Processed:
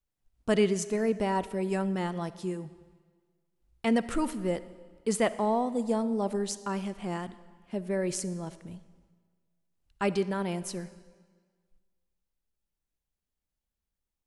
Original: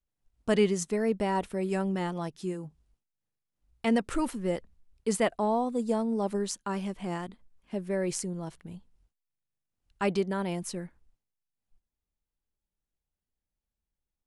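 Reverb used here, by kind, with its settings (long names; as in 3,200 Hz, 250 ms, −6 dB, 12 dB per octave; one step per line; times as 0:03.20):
comb and all-pass reverb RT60 1.6 s, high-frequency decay 0.9×, pre-delay 10 ms, DRR 15 dB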